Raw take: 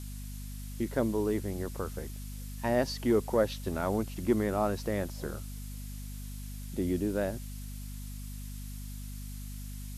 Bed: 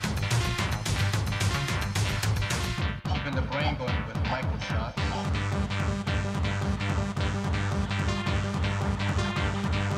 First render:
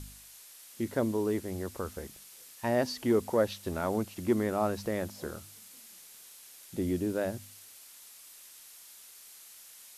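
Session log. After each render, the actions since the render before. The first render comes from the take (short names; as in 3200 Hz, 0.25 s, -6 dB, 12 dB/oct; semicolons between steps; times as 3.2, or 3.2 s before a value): de-hum 50 Hz, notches 5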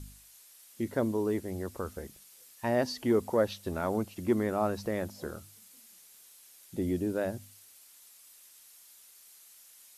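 denoiser 6 dB, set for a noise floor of -53 dBFS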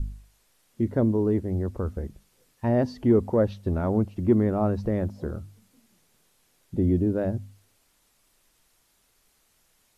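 tilt -4 dB/oct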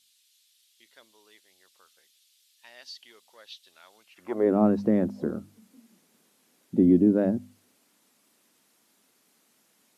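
high-pass sweep 3500 Hz -> 230 Hz, 4.01–4.56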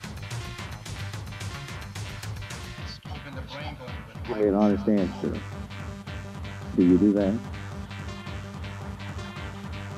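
add bed -8.5 dB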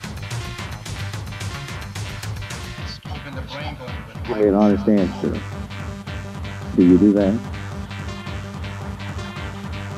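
gain +6.5 dB; limiter -3 dBFS, peak gain reduction 1 dB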